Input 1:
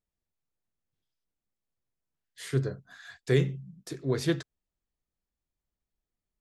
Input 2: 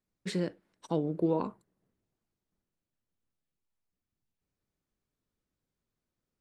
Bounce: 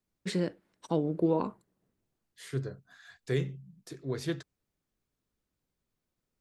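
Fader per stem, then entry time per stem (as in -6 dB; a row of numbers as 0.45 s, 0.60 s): -6.0 dB, +1.5 dB; 0.00 s, 0.00 s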